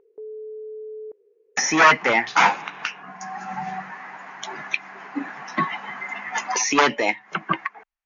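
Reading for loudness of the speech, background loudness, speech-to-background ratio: -22.0 LUFS, -37.5 LUFS, 15.5 dB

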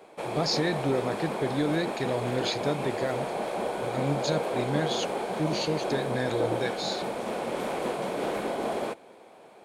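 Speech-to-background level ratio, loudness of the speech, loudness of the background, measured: 0.5 dB, -31.0 LUFS, -31.5 LUFS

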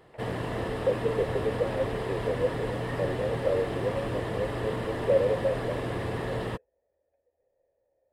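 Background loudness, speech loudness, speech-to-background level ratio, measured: -33.0 LUFS, -31.5 LUFS, 1.5 dB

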